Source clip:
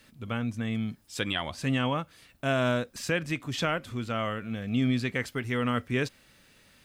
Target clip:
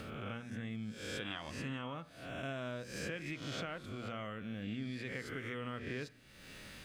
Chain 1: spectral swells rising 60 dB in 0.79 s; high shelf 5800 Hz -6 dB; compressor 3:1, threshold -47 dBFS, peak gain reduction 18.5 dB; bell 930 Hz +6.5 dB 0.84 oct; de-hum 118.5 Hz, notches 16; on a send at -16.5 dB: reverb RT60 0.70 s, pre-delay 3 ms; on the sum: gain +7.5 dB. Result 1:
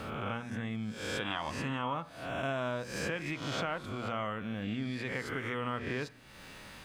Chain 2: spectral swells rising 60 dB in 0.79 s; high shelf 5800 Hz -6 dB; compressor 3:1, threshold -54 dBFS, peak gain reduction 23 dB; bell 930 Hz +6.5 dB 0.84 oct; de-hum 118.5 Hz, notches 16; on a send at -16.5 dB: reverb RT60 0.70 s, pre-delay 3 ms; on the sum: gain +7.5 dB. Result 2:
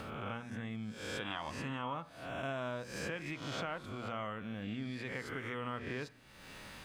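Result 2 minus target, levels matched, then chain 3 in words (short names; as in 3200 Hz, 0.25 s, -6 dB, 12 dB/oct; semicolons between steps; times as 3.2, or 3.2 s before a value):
1000 Hz band +4.5 dB
spectral swells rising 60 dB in 0.79 s; high shelf 5800 Hz -6 dB; compressor 3:1, threshold -54 dBFS, peak gain reduction 23 dB; bell 930 Hz -3 dB 0.84 oct; de-hum 118.5 Hz, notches 16; on a send at -16.5 dB: reverb RT60 0.70 s, pre-delay 3 ms; on the sum: gain +7.5 dB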